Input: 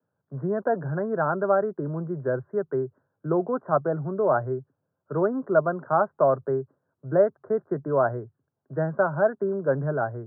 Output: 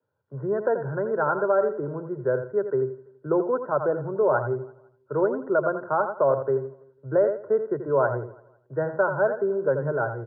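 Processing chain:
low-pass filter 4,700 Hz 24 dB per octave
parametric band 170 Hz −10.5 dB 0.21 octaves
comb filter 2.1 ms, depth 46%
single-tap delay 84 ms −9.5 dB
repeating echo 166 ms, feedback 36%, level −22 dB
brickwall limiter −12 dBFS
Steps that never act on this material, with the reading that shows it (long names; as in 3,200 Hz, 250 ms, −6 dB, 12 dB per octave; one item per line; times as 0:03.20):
low-pass filter 4,700 Hz: nothing at its input above 1,600 Hz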